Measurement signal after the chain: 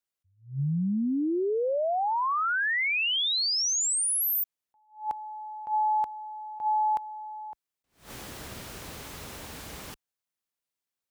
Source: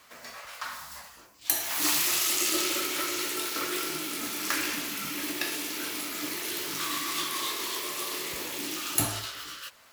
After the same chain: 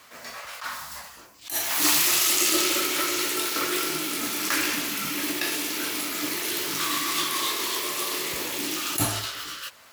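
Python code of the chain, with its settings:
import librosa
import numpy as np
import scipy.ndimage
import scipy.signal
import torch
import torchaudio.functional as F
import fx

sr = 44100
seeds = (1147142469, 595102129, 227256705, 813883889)

y = scipy.signal.sosfilt(scipy.signal.butter(2, 47.0, 'highpass', fs=sr, output='sos'), x)
y = fx.attack_slew(y, sr, db_per_s=170.0)
y = y * librosa.db_to_amplitude(5.0)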